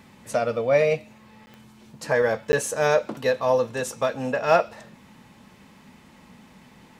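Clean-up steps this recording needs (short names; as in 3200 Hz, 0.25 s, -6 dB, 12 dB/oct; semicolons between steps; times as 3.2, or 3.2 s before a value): de-click; interpolate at 1.46/2.52, 10 ms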